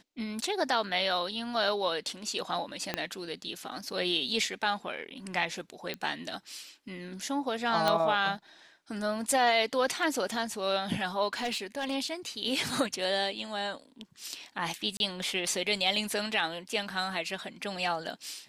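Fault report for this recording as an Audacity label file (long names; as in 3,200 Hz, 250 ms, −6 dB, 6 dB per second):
2.940000	2.940000	click −14 dBFS
5.940000	5.940000	click −20 dBFS
7.880000	7.880000	click −12 dBFS
11.330000	11.950000	clipping −27.5 dBFS
14.970000	15.000000	drop-out 31 ms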